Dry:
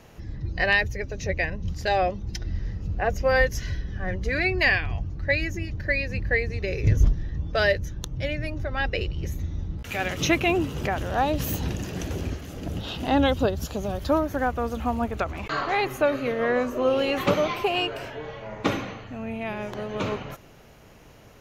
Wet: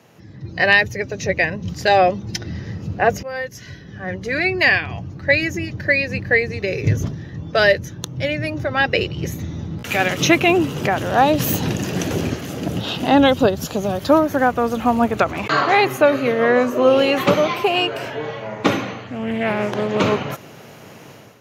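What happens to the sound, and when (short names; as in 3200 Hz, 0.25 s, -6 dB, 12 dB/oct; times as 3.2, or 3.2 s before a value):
3.23–5.51 fade in linear, from -19 dB
19.03–20.01 Doppler distortion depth 0.27 ms
whole clip: AGC gain up to 11.5 dB; HPF 110 Hz 24 dB/oct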